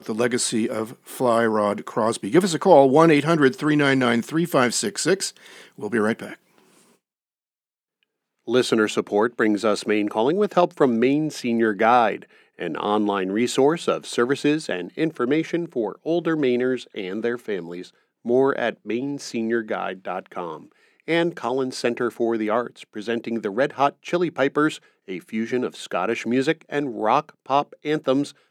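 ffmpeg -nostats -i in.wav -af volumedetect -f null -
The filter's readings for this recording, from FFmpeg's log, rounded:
mean_volume: -22.3 dB
max_volume: -1.1 dB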